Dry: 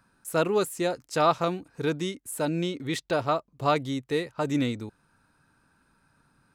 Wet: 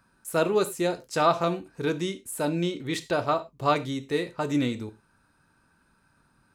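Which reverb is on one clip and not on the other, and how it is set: gated-style reverb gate 130 ms falling, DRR 9 dB

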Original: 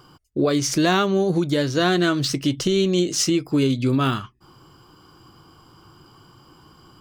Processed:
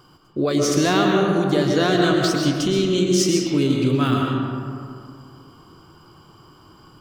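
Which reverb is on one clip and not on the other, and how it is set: algorithmic reverb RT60 2.4 s, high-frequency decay 0.4×, pre-delay 85 ms, DRR 0 dB; trim -1.5 dB

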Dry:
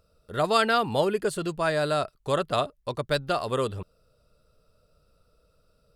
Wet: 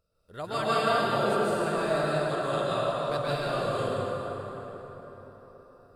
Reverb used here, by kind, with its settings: plate-style reverb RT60 4.6 s, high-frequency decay 0.55×, pre-delay 115 ms, DRR -10 dB; trim -12 dB

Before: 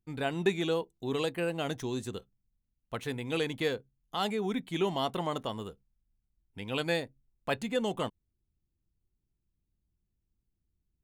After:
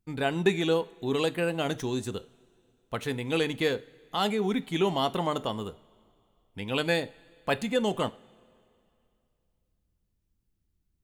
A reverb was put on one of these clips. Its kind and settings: two-slope reverb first 0.35 s, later 2.6 s, from -18 dB, DRR 14 dB; trim +4 dB

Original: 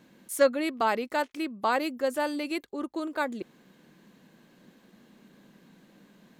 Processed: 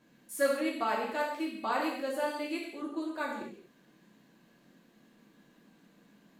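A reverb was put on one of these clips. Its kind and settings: gated-style reverb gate 270 ms falling, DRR -4.5 dB; trim -10 dB

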